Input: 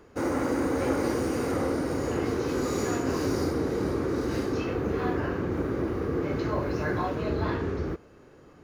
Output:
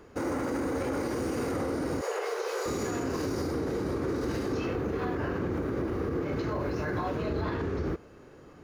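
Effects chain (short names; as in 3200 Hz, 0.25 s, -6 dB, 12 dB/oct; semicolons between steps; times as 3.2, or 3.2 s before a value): 2.01–2.66 steep high-pass 410 Hz 72 dB/oct; limiter -24.5 dBFS, peak gain reduction 10 dB; gain +1.5 dB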